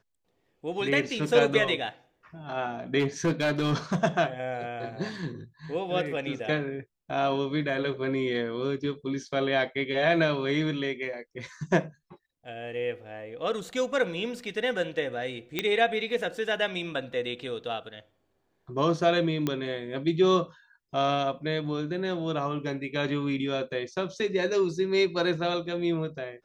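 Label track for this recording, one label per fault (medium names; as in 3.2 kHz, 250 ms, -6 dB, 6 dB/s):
2.990000	3.960000	clipped -20.5 dBFS
15.590000	15.590000	pop -12 dBFS
19.470000	19.470000	pop -14 dBFS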